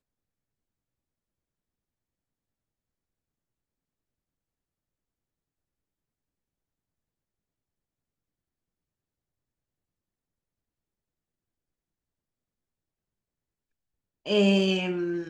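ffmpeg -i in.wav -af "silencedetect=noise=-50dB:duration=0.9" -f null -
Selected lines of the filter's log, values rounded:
silence_start: 0.00
silence_end: 14.26 | silence_duration: 14.26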